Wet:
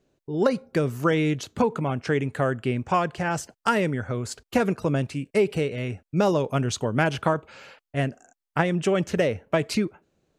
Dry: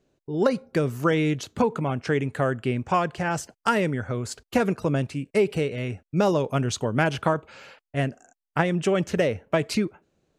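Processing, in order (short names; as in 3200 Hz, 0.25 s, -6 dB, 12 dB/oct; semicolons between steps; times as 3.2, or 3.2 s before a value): 4.88–5.28 mismatched tape noise reduction encoder only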